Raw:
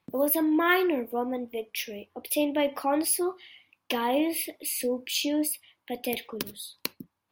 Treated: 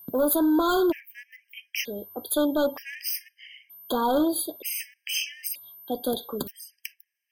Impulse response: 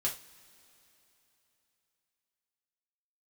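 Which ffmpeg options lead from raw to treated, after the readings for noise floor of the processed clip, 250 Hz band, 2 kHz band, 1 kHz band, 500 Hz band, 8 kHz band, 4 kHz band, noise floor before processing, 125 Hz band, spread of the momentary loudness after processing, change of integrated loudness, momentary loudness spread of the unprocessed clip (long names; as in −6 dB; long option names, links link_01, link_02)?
−79 dBFS, +1.5 dB, −3.5 dB, +0.5 dB, +1.5 dB, −1.0 dB, +0.5 dB, −80 dBFS, can't be measured, 21 LU, +1.0 dB, 13 LU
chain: -af "asoftclip=type=hard:threshold=-22.5dB,aeval=exprs='val(0)+0.00355*sin(2*PI*13000*n/s)':channel_layout=same,afftfilt=real='re*gt(sin(2*PI*0.54*pts/sr)*(1-2*mod(floor(b*sr/1024/1600),2)),0)':imag='im*gt(sin(2*PI*0.54*pts/sr)*(1-2*mod(floor(b*sr/1024/1600),2)),0)':win_size=1024:overlap=0.75,volume=4.5dB"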